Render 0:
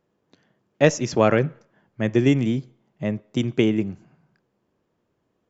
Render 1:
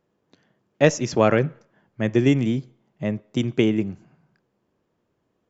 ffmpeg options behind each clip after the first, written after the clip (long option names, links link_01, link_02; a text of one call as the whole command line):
ffmpeg -i in.wav -af anull out.wav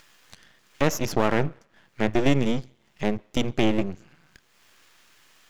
ffmpeg -i in.wav -filter_complex "[0:a]acrossover=split=1500[link_01][link_02];[link_02]acompressor=mode=upward:threshold=-34dB:ratio=2.5[link_03];[link_01][link_03]amix=inputs=2:normalize=0,aeval=exprs='max(val(0),0)':channel_layout=same,alimiter=level_in=10dB:limit=-1dB:release=50:level=0:latency=1,volume=-6.5dB" out.wav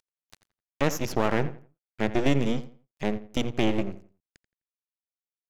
ffmpeg -i in.wav -filter_complex "[0:a]aeval=exprs='sgn(val(0))*max(abs(val(0))-0.0075,0)':channel_layout=same,asplit=2[link_01][link_02];[link_02]adelay=85,lowpass=frequency=3000:poles=1,volume=-14.5dB,asplit=2[link_03][link_04];[link_04]adelay=85,lowpass=frequency=3000:poles=1,volume=0.28,asplit=2[link_05][link_06];[link_06]adelay=85,lowpass=frequency=3000:poles=1,volume=0.28[link_07];[link_01][link_03][link_05][link_07]amix=inputs=4:normalize=0,volume=-2.5dB" out.wav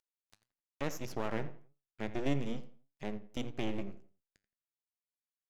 ffmpeg -i in.wav -af "flanger=delay=6.9:depth=3.2:regen=84:speed=1.7:shape=sinusoidal,volume=-7.5dB" out.wav